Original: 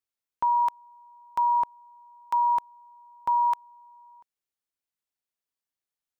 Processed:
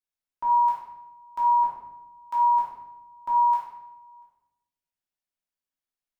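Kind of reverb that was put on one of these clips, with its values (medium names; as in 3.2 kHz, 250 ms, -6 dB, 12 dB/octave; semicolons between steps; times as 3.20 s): simulated room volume 330 m³, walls mixed, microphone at 2.8 m; trim -10 dB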